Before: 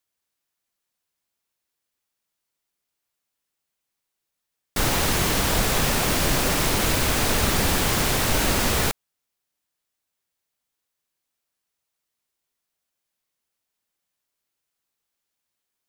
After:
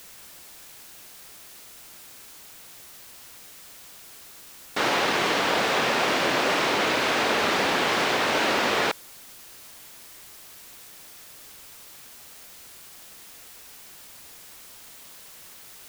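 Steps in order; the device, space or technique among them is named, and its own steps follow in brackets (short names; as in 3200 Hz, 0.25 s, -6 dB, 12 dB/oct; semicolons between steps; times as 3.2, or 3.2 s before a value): dictaphone (BPF 350–3600 Hz; AGC gain up to 5 dB; wow and flutter; white noise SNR 17 dB); gain -2 dB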